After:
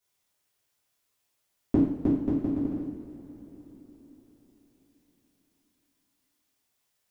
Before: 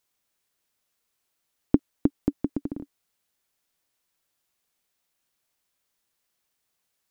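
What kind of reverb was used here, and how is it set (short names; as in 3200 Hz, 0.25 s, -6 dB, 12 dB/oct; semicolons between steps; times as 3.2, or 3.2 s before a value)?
two-slope reverb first 0.6 s, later 4.7 s, from -18 dB, DRR -9.5 dB; gain -9 dB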